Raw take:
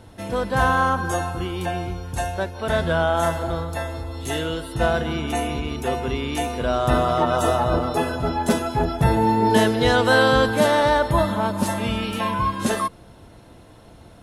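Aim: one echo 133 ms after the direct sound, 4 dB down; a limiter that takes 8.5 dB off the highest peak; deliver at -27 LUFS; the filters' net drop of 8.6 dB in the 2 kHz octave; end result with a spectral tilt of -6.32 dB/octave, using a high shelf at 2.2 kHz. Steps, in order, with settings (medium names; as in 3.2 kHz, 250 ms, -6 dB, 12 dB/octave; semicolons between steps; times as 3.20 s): peaking EQ 2 kHz -8.5 dB; treble shelf 2.2 kHz -8 dB; peak limiter -14.5 dBFS; delay 133 ms -4 dB; trim -3 dB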